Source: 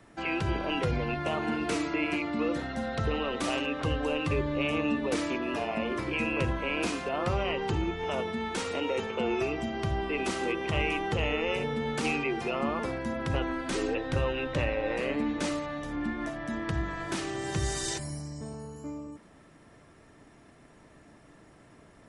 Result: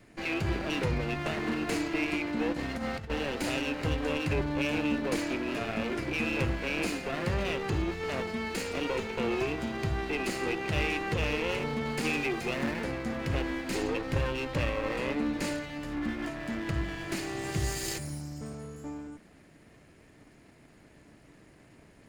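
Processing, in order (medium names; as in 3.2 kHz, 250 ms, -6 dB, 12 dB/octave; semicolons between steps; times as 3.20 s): comb filter that takes the minimum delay 0.44 ms; 2.52–3.10 s: compressor with a negative ratio -34 dBFS, ratio -0.5; 12.13–12.72 s: treble shelf 5.3 kHz +5.5 dB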